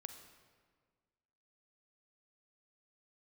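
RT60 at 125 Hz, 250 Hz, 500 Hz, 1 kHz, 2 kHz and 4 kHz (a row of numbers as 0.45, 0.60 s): 1.8, 1.9, 1.7, 1.6, 1.4, 1.2 s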